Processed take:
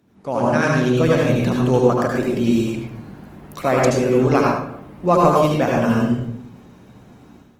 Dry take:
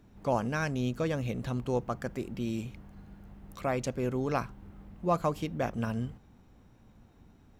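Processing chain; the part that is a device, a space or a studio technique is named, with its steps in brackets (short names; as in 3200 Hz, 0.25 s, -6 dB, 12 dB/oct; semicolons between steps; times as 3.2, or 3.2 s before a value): far-field microphone of a smart speaker (reverb RT60 0.70 s, pre-delay 70 ms, DRR -2 dB; HPF 140 Hz 12 dB/oct; AGC gain up to 10 dB; gain +2 dB; Opus 20 kbps 48000 Hz)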